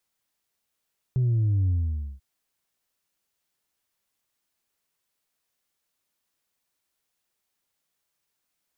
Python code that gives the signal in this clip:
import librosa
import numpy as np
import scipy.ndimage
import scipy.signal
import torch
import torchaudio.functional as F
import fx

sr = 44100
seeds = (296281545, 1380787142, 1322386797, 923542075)

y = fx.sub_drop(sr, level_db=-20, start_hz=130.0, length_s=1.04, drive_db=1.5, fade_s=0.52, end_hz=65.0)